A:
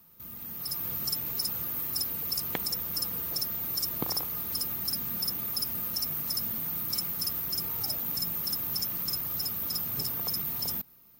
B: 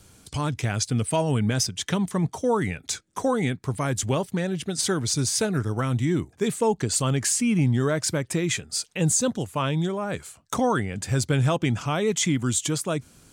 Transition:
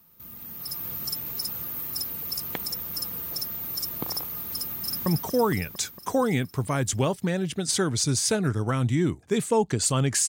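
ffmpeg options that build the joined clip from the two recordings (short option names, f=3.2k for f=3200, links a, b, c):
-filter_complex "[0:a]apad=whole_dur=10.28,atrim=end=10.28,atrim=end=5.062[a];[1:a]atrim=start=2.158:end=7.38[b];[a][b]acrossfade=d=0.004:c1=hsin:c2=hsin,asplit=2[c][d];[d]afade=t=in:st=4.6:d=0.01,afade=t=out:st=5.06:d=0.01,aecho=0:1:230|460|690|920|1150|1380|1610|1840|2070|2300|2530|2760:0.562341|0.393639|0.275547|0.192883|0.135018|0.0945127|0.0661589|0.0463112|0.0324179|0.0226925|0.0158848|0.0111193[e];[c][e]amix=inputs=2:normalize=0"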